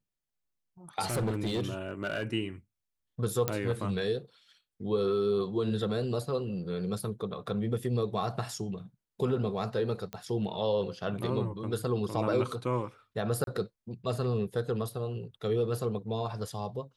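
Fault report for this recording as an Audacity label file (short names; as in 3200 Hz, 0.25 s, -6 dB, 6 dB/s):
1.060000	2.230000	clipped -26.5 dBFS
3.480000	3.480000	pop -12 dBFS
10.130000	10.130000	pop -23 dBFS
13.440000	13.470000	gap 32 ms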